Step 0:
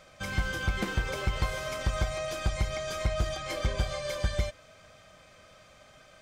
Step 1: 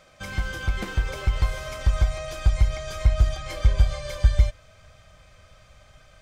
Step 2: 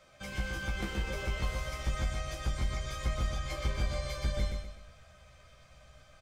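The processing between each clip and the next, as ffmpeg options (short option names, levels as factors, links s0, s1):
-af "asubboost=boost=6.5:cutoff=100"
-filter_complex "[0:a]acrossover=split=200|2900[s0][s1][s2];[s0]asoftclip=type=tanh:threshold=0.0794[s3];[s3][s1][s2]amix=inputs=3:normalize=0,asplit=2[s4][s5];[s5]adelay=15,volume=0.708[s6];[s4][s6]amix=inputs=2:normalize=0,aecho=1:1:124|248|372|496|620:0.562|0.214|0.0812|0.0309|0.0117,volume=0.422"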